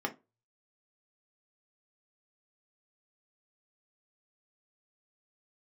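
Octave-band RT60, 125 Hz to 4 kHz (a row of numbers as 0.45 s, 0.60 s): 0.55 s, 0.25 s, 0.25 s, 0.25 s, 0.20 s, 0.15 s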